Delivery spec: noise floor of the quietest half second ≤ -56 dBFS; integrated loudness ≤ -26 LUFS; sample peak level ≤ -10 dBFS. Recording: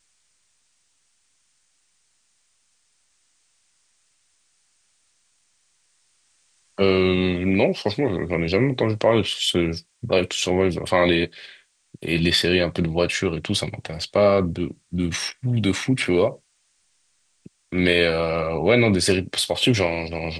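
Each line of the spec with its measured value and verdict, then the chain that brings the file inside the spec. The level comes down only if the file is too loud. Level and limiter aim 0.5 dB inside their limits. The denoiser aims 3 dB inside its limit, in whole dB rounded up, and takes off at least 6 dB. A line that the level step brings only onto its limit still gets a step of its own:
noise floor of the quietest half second -67 dBFS: OK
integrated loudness -21.5 LUFS: fail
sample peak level -5.5 dBFS: fail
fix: gain -5 dB

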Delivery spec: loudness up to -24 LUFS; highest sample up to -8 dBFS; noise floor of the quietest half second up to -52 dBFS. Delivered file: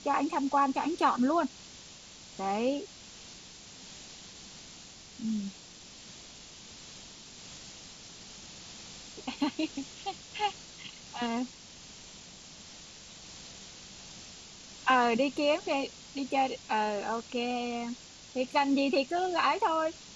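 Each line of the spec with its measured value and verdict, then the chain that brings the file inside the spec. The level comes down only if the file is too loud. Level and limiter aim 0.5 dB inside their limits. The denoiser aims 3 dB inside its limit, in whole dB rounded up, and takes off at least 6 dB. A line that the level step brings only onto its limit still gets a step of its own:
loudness -31.0 LUFS: OK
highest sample -13.5 dBFS: OK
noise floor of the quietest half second -50 dBFS: fail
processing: denoiser 6 dB, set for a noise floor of -50 dBFS

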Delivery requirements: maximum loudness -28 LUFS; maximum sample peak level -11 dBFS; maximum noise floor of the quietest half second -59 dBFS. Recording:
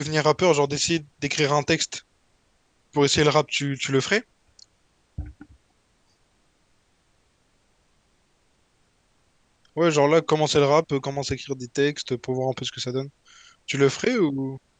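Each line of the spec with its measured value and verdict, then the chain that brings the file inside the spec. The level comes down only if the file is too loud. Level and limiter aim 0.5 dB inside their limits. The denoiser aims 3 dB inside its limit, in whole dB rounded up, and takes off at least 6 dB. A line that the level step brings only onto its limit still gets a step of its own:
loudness -23.0 LUFS: fail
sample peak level -4.0 dBFS: fail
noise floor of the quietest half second -65 dBFS: OK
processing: gain -5.5 dB; limiter -11.5 dBFS

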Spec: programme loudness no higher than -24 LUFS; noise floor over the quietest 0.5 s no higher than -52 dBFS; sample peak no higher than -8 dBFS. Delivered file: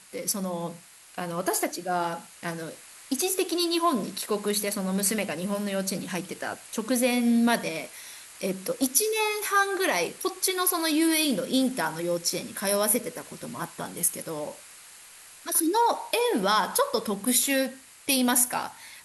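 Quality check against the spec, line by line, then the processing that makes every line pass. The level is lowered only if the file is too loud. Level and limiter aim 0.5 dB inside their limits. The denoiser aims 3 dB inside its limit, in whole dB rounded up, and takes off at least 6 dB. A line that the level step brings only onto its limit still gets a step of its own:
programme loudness -26.0 LUFS: OK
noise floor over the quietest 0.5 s -49 dBFS: fail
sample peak -7.0 dBFS: fail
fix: denoiser 6 dB, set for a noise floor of -49 dBFS; limiter -8.5 dBFS

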